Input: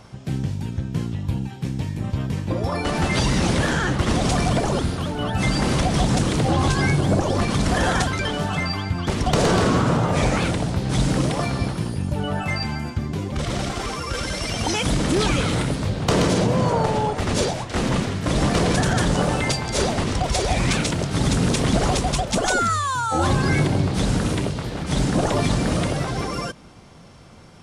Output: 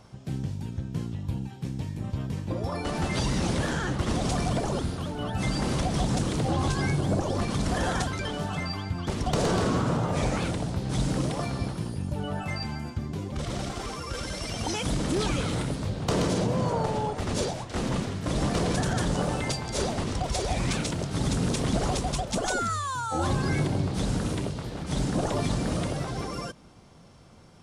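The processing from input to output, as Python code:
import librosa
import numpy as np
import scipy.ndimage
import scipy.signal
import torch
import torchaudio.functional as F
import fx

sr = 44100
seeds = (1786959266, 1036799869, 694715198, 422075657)

y = fx.peak_eq(x, sr, hz=2100.0, db=-3.0, octaves=1.4)
y = y * 10.0 ** (-6.5 / 20.0)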